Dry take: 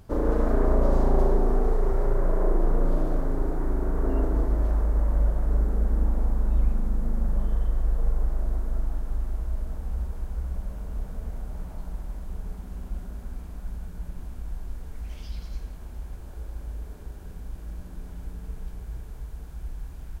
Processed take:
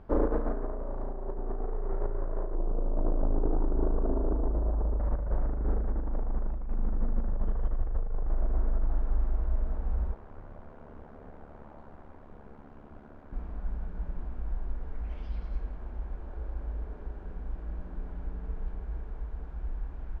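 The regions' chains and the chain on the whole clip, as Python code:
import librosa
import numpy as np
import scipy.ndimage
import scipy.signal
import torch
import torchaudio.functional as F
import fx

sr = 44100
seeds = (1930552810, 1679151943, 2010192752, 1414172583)

y = fx.chain(x, sr, fx.lowpass(hz=1000.0, slope=12),
    fx.over_compress(threshold_db=-25.0, ratio=-1.0),
    fx.transformer_sat(knee_hz=76.0), at=(2.55, 5.0))
y = fx.chain(y, sr, fx.highpass(hz=200.0, slope=6),
    fx.ring_mod(carrier_hz=36.0), at=(10.14, 13.33))
y = scipy.signal.sosfilt(scipy.signal.butter(2, 1600.0, 'lowpass', fs=sr, output='sos'), y)
y = fx.peak_eq(y, sr, hz=110.0, db=-10.0, octaves=1.4)
y = fx.over_compress(y, sr, threshold_db=-25.0, ratio=-0.5)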